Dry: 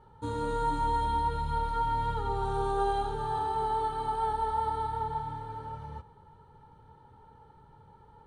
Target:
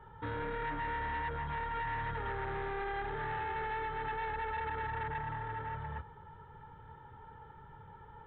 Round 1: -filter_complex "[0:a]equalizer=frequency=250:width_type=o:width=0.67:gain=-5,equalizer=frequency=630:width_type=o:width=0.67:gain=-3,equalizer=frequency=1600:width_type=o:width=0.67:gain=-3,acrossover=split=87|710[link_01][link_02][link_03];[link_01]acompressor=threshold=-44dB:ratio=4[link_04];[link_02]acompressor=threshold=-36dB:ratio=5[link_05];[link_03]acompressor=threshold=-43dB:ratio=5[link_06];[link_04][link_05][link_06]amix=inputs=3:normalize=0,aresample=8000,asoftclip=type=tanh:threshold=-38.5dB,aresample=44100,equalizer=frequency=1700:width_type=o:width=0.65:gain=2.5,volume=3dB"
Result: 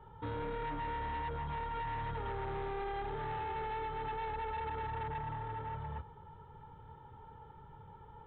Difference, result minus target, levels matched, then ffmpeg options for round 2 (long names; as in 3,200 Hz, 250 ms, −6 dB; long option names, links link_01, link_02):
2,000 Hz band −5.5 dB
-filter_complex "[0:a]equalizer=frequency=250:width_type=o:width=0.67:gain=-5,equalizer=frequency=630:width_type=o:width=0.67:gain=-3,equalizer=frequency=1600:width_type=o:width=0.67:gain=-3,acrossover=split=87|710[link_01][link_02][link_03];[link_01]acompressor=threshold=-44dB:ratio=4[link_04];[link_02]acompressor=threshold=-36dB:ratio=5[link_05];[link_03]acompressor=threshold=-43dB:ratio=5[link_06];[link_04][link_05][link_06]amix=inputs=3:normalize=0,aresample=8000,asoftclip=type=tanh:threshold=-38.5dB,aresample=44100,equalizer=frequency=1700:width_type=o:width=0.65:gain=11.5,volume=3dB"